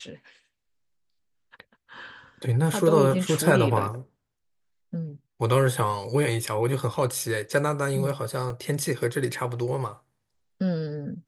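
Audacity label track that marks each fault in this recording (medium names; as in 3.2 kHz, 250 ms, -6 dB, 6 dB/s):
8.500000	8.500000	dropout 2.3 ms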